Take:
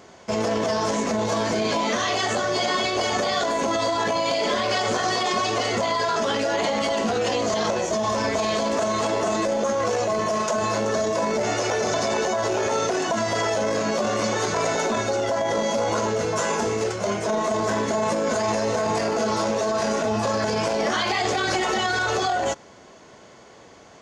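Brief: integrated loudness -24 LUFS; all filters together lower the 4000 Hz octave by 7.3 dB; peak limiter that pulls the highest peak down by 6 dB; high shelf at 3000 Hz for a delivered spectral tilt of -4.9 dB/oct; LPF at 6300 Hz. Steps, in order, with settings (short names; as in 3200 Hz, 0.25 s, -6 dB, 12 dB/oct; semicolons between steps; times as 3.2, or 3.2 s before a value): LPF 6300 Hz; high shelf 3000 Hz -3.5 dB; bell 4000 Hz -6 dB; gain +3 dB; limiter -15.5 dBFS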